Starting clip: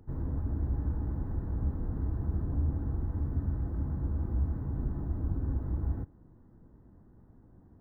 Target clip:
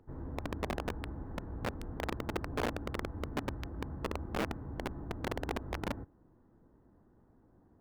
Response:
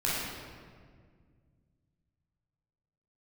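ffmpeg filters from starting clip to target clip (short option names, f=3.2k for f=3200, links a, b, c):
-af "aeval=exprs='(mod(15.8*val(0)+1,2)-1)/15.8':c=same,bass=f=250:g=-9,treble=f=4k:g=-9,volume=-1dB"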